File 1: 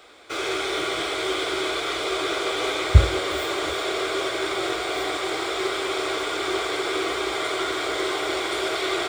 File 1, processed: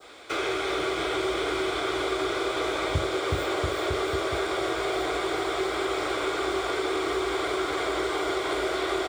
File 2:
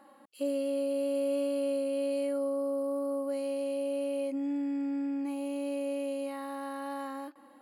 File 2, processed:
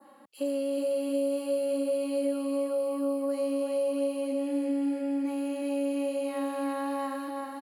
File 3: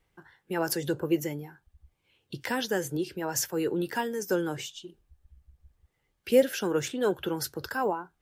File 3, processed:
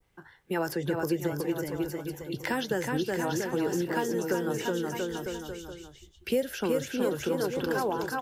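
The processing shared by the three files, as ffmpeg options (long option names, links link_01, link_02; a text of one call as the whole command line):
ffmpeg -i in.wav -filter_complex "[0:a]adynamicequalizer=threshold=0.00631:dfrequency=2600:dqfactor=0.87:tfrequency=2600:tqfactor=0.87:attack=5:release=100:ratio=0.375:range=2:mode=cutabove:tftype=bell,aecho=1:1:370|684.5|951.8|1179|1372:0.631|0.398|0.251|0.158|0.1,acrossover=split=120|3300[link_01][link_02][link_03];[link_01]acompressor=threshold=-41dB:ratio=4[link_04];[link_02]acompressor=threshold=-28dB:ratio=4[link_05];[link_03]acompressor=threshold=-46dB:ratio=4[link_06];[link_04][link_05][link_06]amix=inputs=3:normalize=0,volume=2.5dB" out.wav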